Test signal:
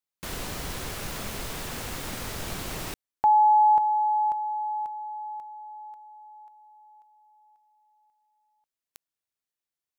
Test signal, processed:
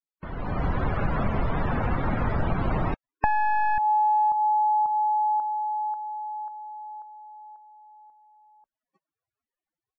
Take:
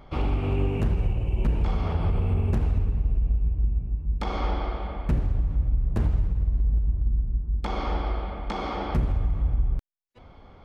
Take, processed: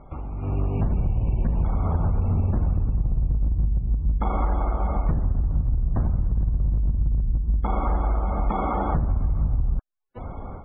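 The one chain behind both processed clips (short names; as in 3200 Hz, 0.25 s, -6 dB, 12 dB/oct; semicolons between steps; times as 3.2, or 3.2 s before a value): one-sided fold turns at -21 dBFS; loudest bins only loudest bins 64; compressor 8:1, threshold -34 dBFS; LPF 1400 Hz 12 dB/oct; dynamic EQ 410 Hz, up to -6 dB, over -57 dBFS, Q 1.3; AGC gain up to 13 dB; gain +2.5 dB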